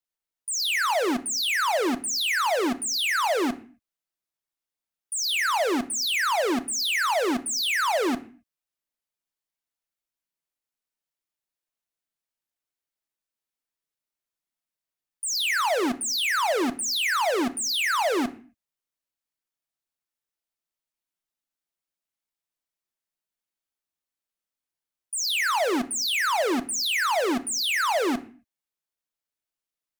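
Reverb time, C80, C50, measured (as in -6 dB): 0.45 s, 21.5 dB, 18.0 dB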